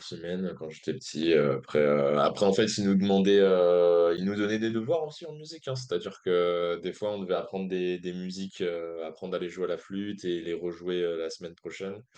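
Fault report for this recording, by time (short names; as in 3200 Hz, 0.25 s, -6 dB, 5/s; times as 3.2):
4.17–4.18 gap 8.2 ms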